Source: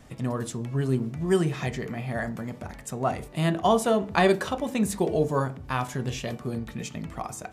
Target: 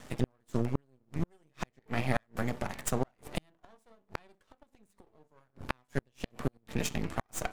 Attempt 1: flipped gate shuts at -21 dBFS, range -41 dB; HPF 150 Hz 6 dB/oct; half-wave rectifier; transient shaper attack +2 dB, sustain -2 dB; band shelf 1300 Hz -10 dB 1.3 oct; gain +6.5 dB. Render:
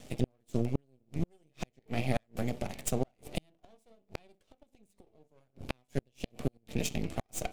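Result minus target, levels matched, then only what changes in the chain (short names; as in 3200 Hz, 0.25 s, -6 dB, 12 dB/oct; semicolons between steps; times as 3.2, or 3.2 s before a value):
1000 Hz band -3.5 dB
remove: band shelf 1300 Hz -10 dB 1.3 oct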